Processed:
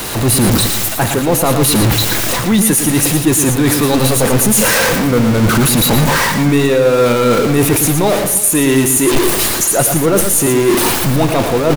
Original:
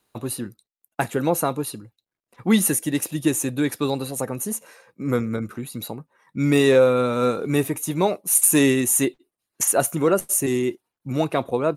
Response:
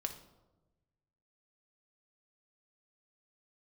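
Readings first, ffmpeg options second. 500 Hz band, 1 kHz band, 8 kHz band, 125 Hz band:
+8.5 dB, +11.5 dB, +10.5 dB, +14.0 dB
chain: -filter_complex "[0:a]aeval=exprs='val(0)+0.5*0.106*sgn(val(0))':c=same,areverse,acompressor=threshold=-24dB:ratio=5,areverse,lowshelf=f=78:g=6,asplit=2[a][b];[1:a]atrim=start_sample=2205,asetrate=33075,aresample=44100[c];[b][c]afir=irnorm=-1:irlink=0,volume=-11dB[d];[a][d]amix=inputs=2:normalize=0,dynaudnorm=f=120:g=3:m=10dB,aecho=1:1:114|329:0.422|0.119,volume=1dB"

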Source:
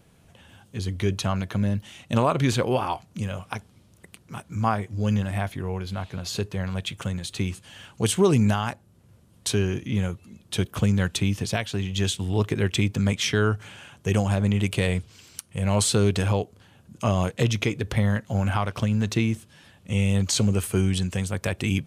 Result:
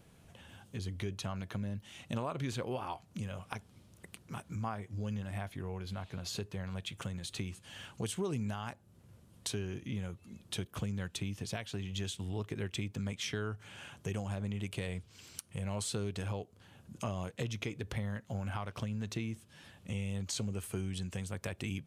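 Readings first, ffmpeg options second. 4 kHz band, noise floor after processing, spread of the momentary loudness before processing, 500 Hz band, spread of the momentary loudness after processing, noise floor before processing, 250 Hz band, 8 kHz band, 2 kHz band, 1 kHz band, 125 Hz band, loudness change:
-12.5 dB, -62 dBFS, 11 LU, -15.0 dB, 10 LU, -57 dBFS, -14.5 dB, -13.0 dB, -13.5 dB, -14.5 dB, -14.0 dB, -14.5 dB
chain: -af "acompressor=threshold=-36dB:ratio=2.5,volume=-3.5dB"

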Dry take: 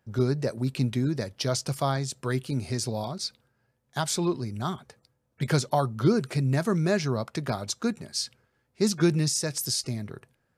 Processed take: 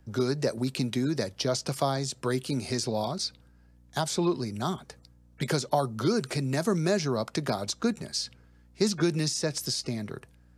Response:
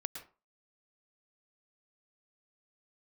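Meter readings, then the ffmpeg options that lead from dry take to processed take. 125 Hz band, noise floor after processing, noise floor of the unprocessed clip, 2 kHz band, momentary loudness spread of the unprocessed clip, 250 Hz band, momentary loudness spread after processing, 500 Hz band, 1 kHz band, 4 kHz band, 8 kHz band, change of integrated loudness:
-4.5 dB, -58 dBFS, -74 dBFS, -1.0 dB, 10 LU, -1.0 dB, 7 LU, 0.0 dB, -0.5 dB, +0.5 dB, -2.5 dB, -1.5 dB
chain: -filter_complex "[0:a]aeval=exprs='val(0)+0.001*(sin(2*PI*60*n/s)+sin(2*PI*2*60*n/s)/2+sin(2*PI*3*60*n/s)/3+sin(2*PI*4*60*n/s)/4+sin(2*PI*5*60*n/s)/5)':c=same,acrossover=split=900|4200[a][b][c];[a]acompressor=threshold=-24dB:ratio=4[d];[b]acompressor=threshold=-40dB:ratio=4[e];[c]acompressor=threshold=-43dB:ratio=4[f];[d][e][f]amix=inputs=3:normalize=0,highshelf=f=7k:g=-12,acrossover=split=160[g][h];[g]acompressor=threshold=-45dB:ratio=6[i];[h]bass=f=250:g=-1,treble=f=4k:g=10[j];[i][j]amix=inputs=2:normalize=0,volume=3.5dB"

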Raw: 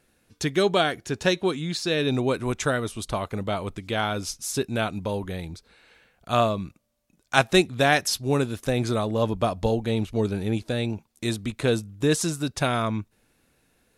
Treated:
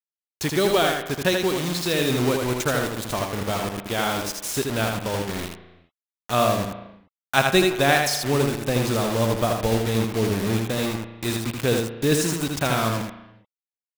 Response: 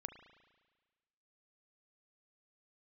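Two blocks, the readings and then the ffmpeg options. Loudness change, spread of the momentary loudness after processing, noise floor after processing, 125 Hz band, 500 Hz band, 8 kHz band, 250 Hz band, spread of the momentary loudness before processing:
+2.5 dB, 9 LU, under -85 dBFS, +2.0 dB, +2.0 dB, +4.0 dB, +2.0 dB, 9 LU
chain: -filter_complex "[0:a]acrusher=bits=4:mix=0:aa=0.000001,asplit=2[a][b];[1:a]atrim=start_sample=2205,afade=t=out:st=0.41:d=0.01,atrim=end_sample=18522,adelay=80[c];[b][c]afir=irnorm=-1:irlink=0,volume=1dB[d];[a][d]amix=inputs=2:normalize=0"

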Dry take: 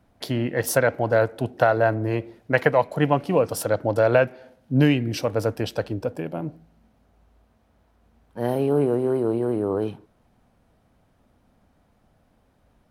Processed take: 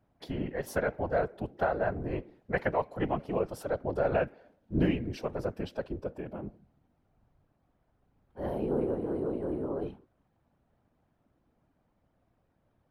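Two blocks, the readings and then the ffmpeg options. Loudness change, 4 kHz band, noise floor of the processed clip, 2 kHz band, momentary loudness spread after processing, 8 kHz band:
-10.0 dB, -14.5 dB, -74 dBFS, -11.0 dB, 10 LU, under -15 dB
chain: -af "highshelf=f=4k:g=-11.5,afftfilt=real='hypot(re,im)*cos(2*PI*random(0))':imag='hypot(re,im)*sin(2*PI*random(1))':win_size=512:overlap=0.75,volume=-3.5dB"

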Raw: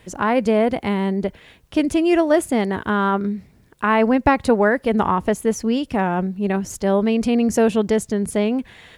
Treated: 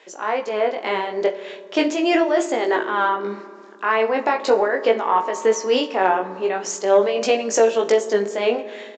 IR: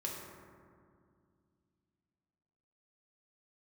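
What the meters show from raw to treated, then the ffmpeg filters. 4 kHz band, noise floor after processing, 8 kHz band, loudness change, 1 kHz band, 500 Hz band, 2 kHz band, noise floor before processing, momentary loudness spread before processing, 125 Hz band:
+4.5 dB, -41 dBFS, +3.0 dB, -0.5 dB, +1.0 dB, +1.5 dB, +0.5 dB, -53 dBFS, 6 LU, under -15 dB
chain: -filter_complex "[0:a]highpass=f=380:w=0.5412,highpass=f=380:w=1.3066,alimiter=limit=-15.5dB:level=0:latency=1:release=83,dynaudnorm=f=340:g=5:m=5.5dB,aresample=16000,aresample=44100,tremolo=f=3.3:d=0.56,flanger=delay=17.5:depth=4.8:speed=0.39,asplit=2[a][b];[1:a]atrim=start_sample=2205,adelay=44[c];[b][c]afir=irnorm=-1:irlink=0,volume=-13dB[d];[a][d]amix=inputs=2:normalize=0,acontrast=68"

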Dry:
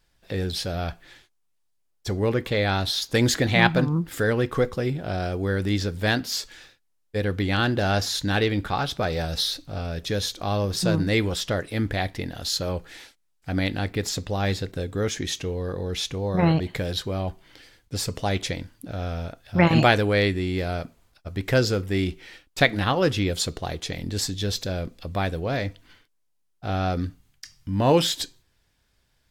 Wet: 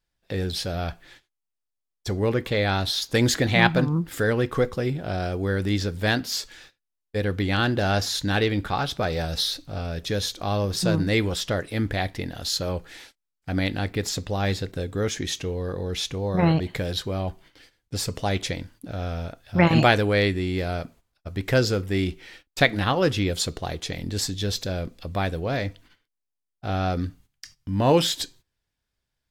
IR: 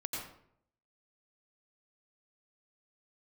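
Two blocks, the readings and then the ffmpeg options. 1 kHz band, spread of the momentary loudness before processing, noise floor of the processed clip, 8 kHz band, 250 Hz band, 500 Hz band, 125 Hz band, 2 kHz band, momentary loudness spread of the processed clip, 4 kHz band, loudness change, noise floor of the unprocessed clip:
0.0 dB, 12 LU, -82 dBFS, 0.0 dB, 0.0 dB, 0.0 dB, 0.0 dB, 0.0 dB, 12 LU, 0.0 dB, 0.0 dB, -69 dBFS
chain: -af "agate=range=-13dB:threshold=-49dB:ratio=16:detection=peak"

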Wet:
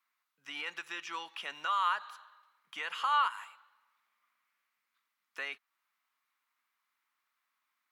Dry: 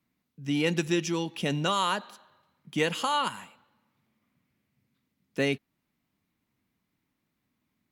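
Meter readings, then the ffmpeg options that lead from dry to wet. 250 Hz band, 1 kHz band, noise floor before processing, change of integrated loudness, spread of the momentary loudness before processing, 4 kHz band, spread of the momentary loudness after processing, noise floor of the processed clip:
under -25 dB, -1.5 dB, -80 dBFS, -5.5 dB, 10 LU, -8.0 dB, 20 LU, -85 dBFS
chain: -filter_complex "[0:a]alimiter=limit=-21.5dB:level=0:latency=1:release=242,highpass=f=1.2k:t=q:w=2.6,acrossover=split=3600[a][b];[b]acompressor=threshold=-53dB:ratio=4:attack=1:release=60[c];[a][c]amix=inputs=2:normalize=0,volume=-2dB"

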